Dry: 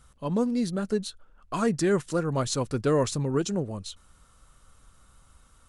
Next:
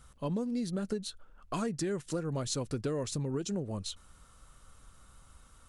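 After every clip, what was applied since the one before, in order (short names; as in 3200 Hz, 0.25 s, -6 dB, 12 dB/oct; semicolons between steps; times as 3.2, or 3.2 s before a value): dynamic EQ 1100 Hz, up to -5 dB, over -40 dBFS, Q 1.1; compressor 10:1, threshold -30 dBFS, peak gain reduction 11 dB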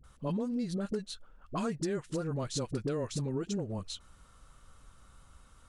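high shelf 8300 Hz -8 dB; dispersion highs, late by 40 ms, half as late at 600 Hz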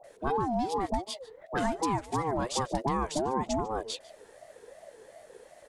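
echo 0.147 s -21 dB; ring modulator with a swept carrier 550 Hz, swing 20%, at 2.7 Hz; gain +7 dB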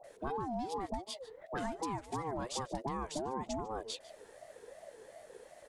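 compressor 2:1, threshold -37 dBFS, peak gain reduction 7.5 dB; gain -2 dB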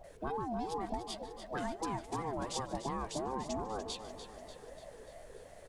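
added noise brown -58 dBFS; on a send: feedback echo 0.294 s, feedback 57%, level -10.5 dB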